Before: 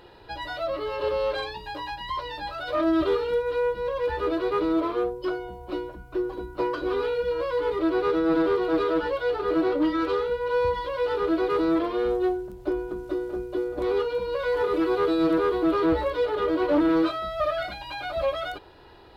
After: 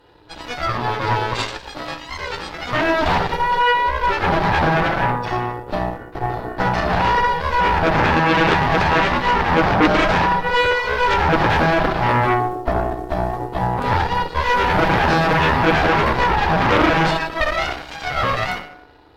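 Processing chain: FDN reverb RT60 0.97 s, low-frequency decay 1.35×, high-frequency decay 0.75×, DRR -1 dB; Chebyshev shaper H 3 -14 dB, 7 -17 dB, 8 -8 dB, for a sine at -5.5 dBFS

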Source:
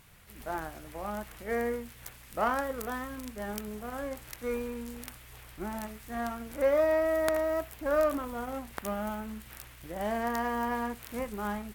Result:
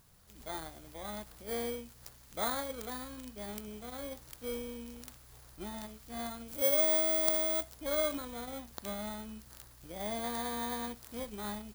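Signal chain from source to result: bit-reversed sample order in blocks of 16 samples; 6.48–7.63 s: treble shelf 6.3 kHz +9.5 dB; trim -5.5 dB

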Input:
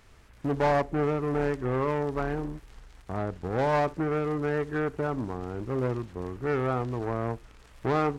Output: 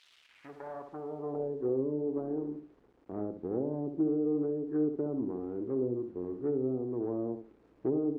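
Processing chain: low-pass that closes with the level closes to 400 Hz, closed at -23 dBFS; 2.07–3.12 s: bass shelf 160 Hz -5.5 dB; tape echo 68 ms, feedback 30%, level -6 dB, low-pass 1.1 kHz; bit crusher 9-bit; band-pass sweep 3.4 kHz -> 330 Hz, 0.11–1.81 s; trim +2.5 dB

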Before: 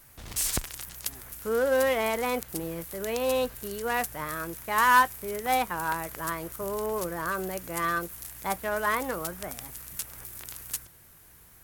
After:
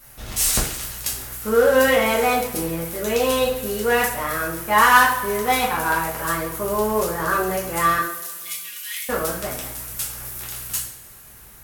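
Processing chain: 7.98–9.09 s: steep high-pass 2.5 kHz 36 dB/octave; two-slope reverb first 0.5 s, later 2 s, from -18 dB, DRR -5.5 dB; trim +3 dB

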